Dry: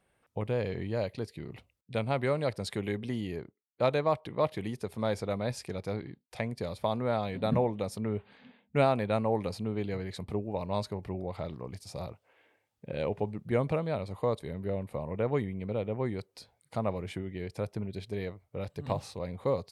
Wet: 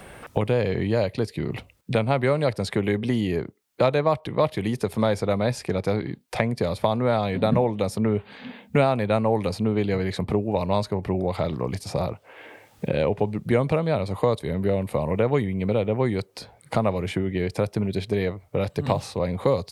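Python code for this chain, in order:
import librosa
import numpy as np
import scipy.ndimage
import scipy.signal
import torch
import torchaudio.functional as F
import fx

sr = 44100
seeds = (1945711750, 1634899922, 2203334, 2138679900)

y = fx.band_squash(x, sr, depth_pct=70)
y = F.gain(torch.from_numpy(y), 8.5).numpy()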